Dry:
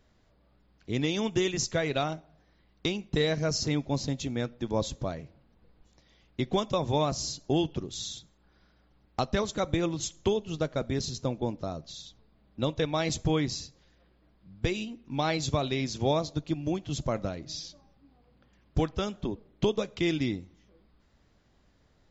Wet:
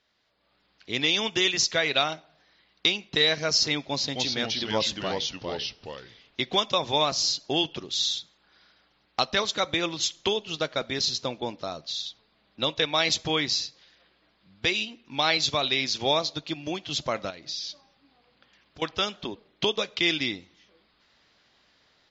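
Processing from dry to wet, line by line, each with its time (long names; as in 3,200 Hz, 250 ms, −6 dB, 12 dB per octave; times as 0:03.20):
0:03.87–0:06.40: delay with pitch and tempo change per echo 260 ms, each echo −2 semitones, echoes 2
0:17.30–0:18.82: downward compressor 4 to 1, threshold −41 dBFS
whole clip: low-pass filter 4,700 Hz 24 dB per octave; spectral tilt +4.5 dB per octave; automatic gain control gain up to 9 dB; level −4 dB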